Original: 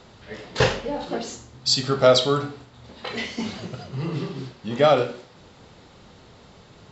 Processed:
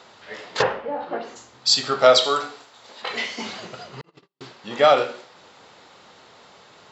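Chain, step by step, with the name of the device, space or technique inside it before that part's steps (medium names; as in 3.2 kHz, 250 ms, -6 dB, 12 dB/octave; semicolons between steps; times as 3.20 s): 0.61–1.35 s: low-pass 1.3 kHz -> 2.1 kHz 12 dB/octave; 4.01–4.41 s: gate -23 dBFS, range -53 dB; filter by subtraction (in parallel: low-pass 990 Hz 12 dB/octave + polarity flip); 2.24–3.02 s: on the sum: tone controls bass -10 dB, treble +6 dB; trim +2.5 dB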